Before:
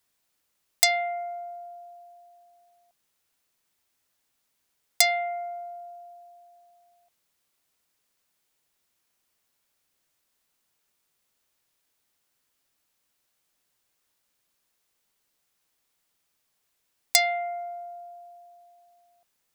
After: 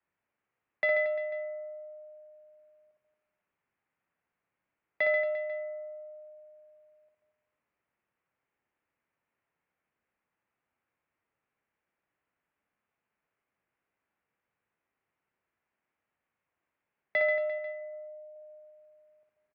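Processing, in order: 17.58–18.36 s: static phaser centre 320 Hz, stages 6; reverse bouncing-ball echo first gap 60 ms, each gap 1.25×, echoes 5; mistuned SSB -88 Hz 150–2500 Hz; trim -4 dB

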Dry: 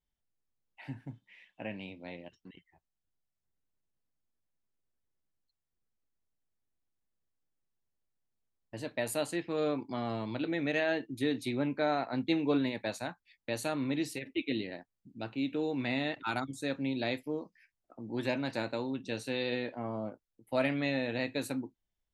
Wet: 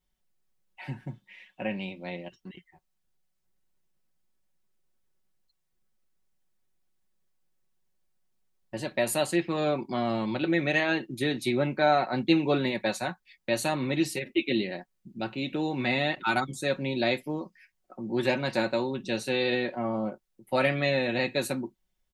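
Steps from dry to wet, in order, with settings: comb 5.4 ms, depth 62%; trim +6 dB

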